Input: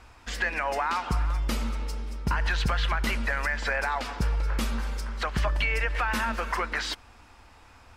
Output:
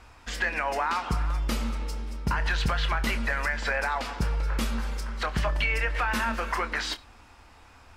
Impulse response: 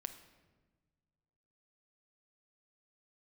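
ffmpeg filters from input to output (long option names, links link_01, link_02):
-filter_complex "[0:a]asplit=2[link_01][link_02];[1:a]atrim=start_sample=2205,afade=type=out:start_time=0.14:duration=0.01,atrim=end_sample=6615,adelay=26[link_03];[link_02][link_03]afir=irnorm=-1:irlink=0,volume=-8dB[link_04];[link_01][link_04]amix=inputs=2:normalize=0"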